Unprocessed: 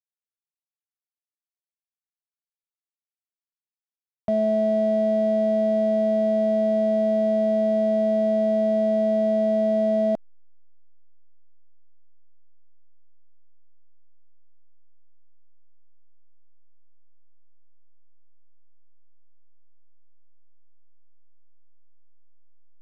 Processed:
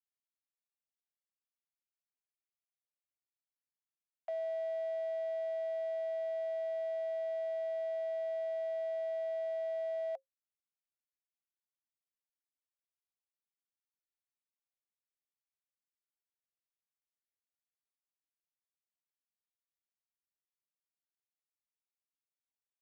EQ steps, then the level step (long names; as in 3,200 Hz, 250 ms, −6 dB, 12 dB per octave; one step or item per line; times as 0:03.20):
Chebyshev high-pass with heavy ripple 520 Hz, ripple 9 dB
−7.5 dB